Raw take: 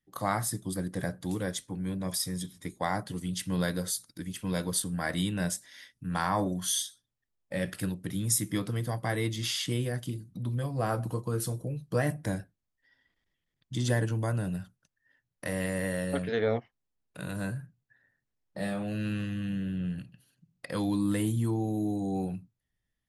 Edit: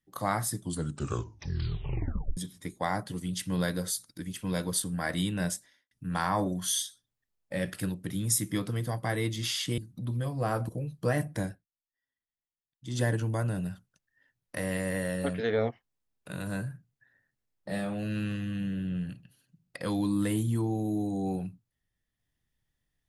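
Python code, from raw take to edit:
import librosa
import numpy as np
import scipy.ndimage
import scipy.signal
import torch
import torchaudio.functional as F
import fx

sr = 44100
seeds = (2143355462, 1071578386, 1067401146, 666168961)

y = fx.studio_fade_out(x, sr, start_s=5.5, length_s=0.41)
y = fx.edit(y, sr, fx.tape_stop(start_s=0.59, length_s=1.78),
    fx.cut(start_s=9.78, length_s=0.38),
    fx.cut(start_s=11.07, length_s=0.51),
    fx.fade_down_up(start_s=12.25, length_s=1.75, db=-22.5, fade_s=0.3, curve='qsin'), tone=tone)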